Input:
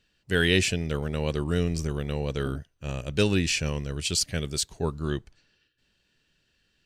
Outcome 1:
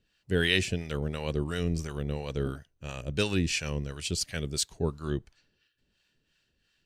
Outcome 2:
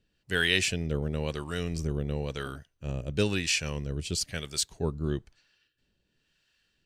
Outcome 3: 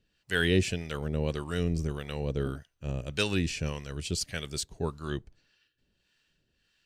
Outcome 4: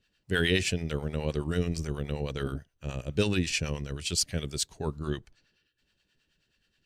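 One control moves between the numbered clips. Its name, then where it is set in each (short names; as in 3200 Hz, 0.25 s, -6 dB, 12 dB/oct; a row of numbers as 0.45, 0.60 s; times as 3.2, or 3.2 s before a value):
harmonic tremolo, rate: 2.9, 1, 1.7, 9.4 Hz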